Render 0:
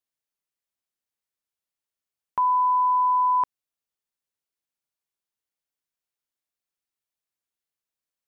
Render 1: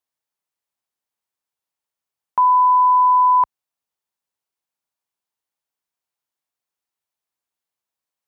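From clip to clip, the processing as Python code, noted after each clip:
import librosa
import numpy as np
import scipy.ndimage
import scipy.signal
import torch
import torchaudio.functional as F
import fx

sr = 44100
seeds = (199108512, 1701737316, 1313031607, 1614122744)

y = scipy.signal.sosfilt(scipy.signal.butter(2, 55.0, 'highpass', fs=sr, output='sos'), x)
y = fx.peak_eq(y, sr, hz=890.0, db=6.5, octaves=0.9)
y = y * 10.0 ** (1.5 / 20.0)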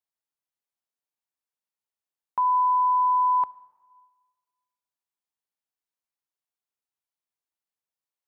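y = fx.rev_plate(x, sr, seeds[0], rt60_s=1.5, hf_ratio=0.95, predelay_ms=0, drr_db=20.0)
y = y * 10.0 ** (-8.0 / 20.0)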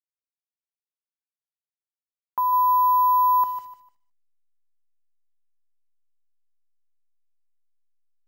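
y = fx.delta_hold(x, sr, step_db=-50.0)
y = fx.echo_feedback(y, sr, ms=150, feedback_pct=27, wet_db=-11.0)
y = np.repeat(y[::3], 3)[:len(y)]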